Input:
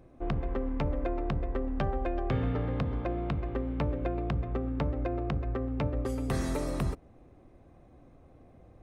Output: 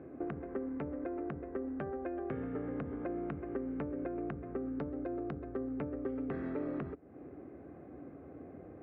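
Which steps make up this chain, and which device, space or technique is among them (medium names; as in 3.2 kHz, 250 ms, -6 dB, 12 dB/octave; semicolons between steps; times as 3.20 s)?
bass amplifier (compression 4:1, threshold -44 dBFS, peak gain reduction 16 dB; cabinet simulation 82–2200 Hz, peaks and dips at 110 Hz -9 dB, 290 Hz +7 dB, 410 Hz +7 dB, 970 Hz -5 dB, 1.5 kHz +4 dB); 4.79–5.70 s: resonant high shelf 3.6 kHz +12.5 dB, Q 1.5; trim +5 dB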